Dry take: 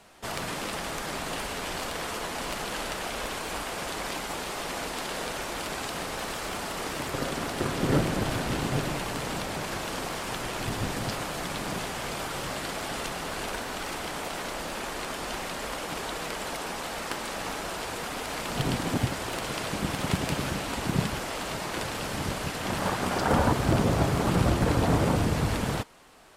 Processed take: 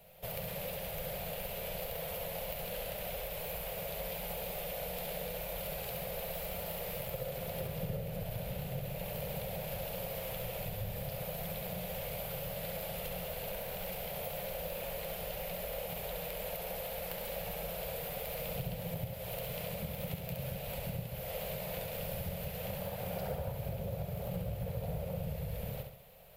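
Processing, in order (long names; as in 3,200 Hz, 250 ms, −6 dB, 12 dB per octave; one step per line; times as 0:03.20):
drawn EQ curve 180 Hz 0 dB, 290 Hz −29 dB, 530 Hz +4 dB, 1,100 Hz −18 dB, 1,700 Hz −14 dB, 2,400 Hz −6 dB, 4,000 Hz −9 dB, 5,800 Hz −15 dB, 8,800 Hz −12 dB, 14,000 Hz +14 dB
downward compressor, threshold −37 dBFS, peak gain reduction 16.5 dB
on a send: flutter between parallel walls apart 11.6 metres, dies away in 0.67 s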